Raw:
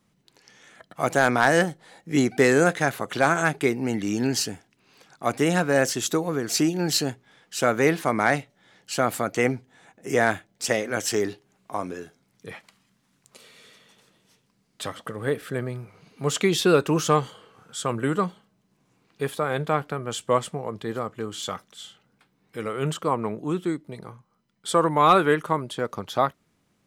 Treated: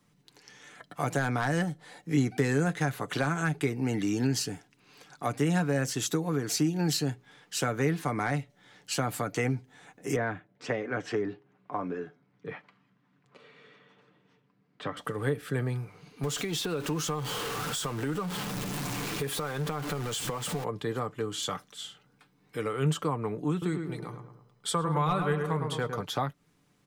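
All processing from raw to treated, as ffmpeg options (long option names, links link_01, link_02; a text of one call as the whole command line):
ffmpeg -i in.wav -filter_complex "[0:a]asettb=1/sr,asplit=3[link_01][link_02][link_03];[link_01]atrim=end=10.164[link_04];[link_02]atrim=start=10.16:end=14.97,asetpts=PTS-STARTPTS,afade=type=in:duration=0.004:curve=qsin,afade=type=out:start_time=4.806:duration=0.004:curve=qsin,highpass=110,lowpass=2000,bandreject=frequency=830:width=17[link_05];[link_03]atrim=start=14.966[link_06];[link_04][link_05]acrossfade=duration=0.004:curve1=hsin:curve2=qsin[link_07];[link_07][link_06]acrossfade=duration=0.004:curve1=qsin:curve2=hsin,asettb=1/sr,asplit=3[link_08][link_09][link_10];[link_08]atrim=end=16.234[link_11];[link_09]atrim=start=16.23:end=20.64,asetpts=PTS-STARTPTS,afade=type=in:duration=0.004:curve=qsin,afade=type=out:start_time=4.406:duration=0.004:curve=qsin,aeval=exprs='val(0)+0.5*0.0376*sgn(val(0))':channel_layout=same,acompressor=threshold=-31dB:ratio=3:attack=3.2:release=140:knee=1:detection=peak[link_12];[link_10]atrim=start=20.636[link_13];[link_11][link_12]acrossfade=duration=0.004:curve1=hsin:curve2=qsin[link_14];[link_14][link_13]acrossfade=duration=0.004:curve1=qsin:curve2=hsin,asettb=1/sr,asplit=3[link_15][link_16][link_17];[link_15]atrim=end=23.514[link_18];[link_16]atrim=start=23.51:end=26.03,asetpts=PTS-STARTPTS,afade=type=in:duration=0.004:curve=qsin,afade=type=out:start_time=2.516:duration=0.004:curve=qsin,equalizer=frequency=300:width=3.9:gain=-7.5,asplit=2[link_19][link_20];[link_20]adelay=107,lowpass=frequency=1900:poles=1,volume=-6.5dB,asplit=2[link_21][link_22];[link_22]adelay=107,lowpass=frequency=1900:poles=1,volume=0.5,asplit=2[link_23][link_24];[link_24]adelay=107,lowpass=frequency=1900:poles=1,volume=0.5,asplit=2[link_25][link_26];[link_26]adelay=107,lowpass=frequency=1900:poles=1,volume=0.5,asplit=2[link_27][link_28];[link_28]adelay=107,lowpass=frequency=1900:poles=1,volume=0.5,asplit=2[link_29][link_30];[link_30]adelay=107,lowpass=frequency=1900:poles=1,volume=0.5[link_31];[link_19][link_21][link_23][link_25][link_27][link_29][link_31]amix=inputs=7:normalize=0,atrim=end_sample=111132[link_32];[link_17]atrim=start=26.026[link_33];[link_18][link_32]acrossfade=duration=0.004:curve1=hsin:curve2=qsin[link_34];[link_34][link_33]acrossfade=duration=0.004:curve1=qsin:curve2=hsin,bandreject=frequency=620:width=13,aecho=1:1:6.8:0.4,acrossover=split=190[link_35][link_36];[link_36]acompressor=threshold=-29dB:ratio=4[link_37];[link_35][link_37]amix=inputs=2:normalize=0" out.wav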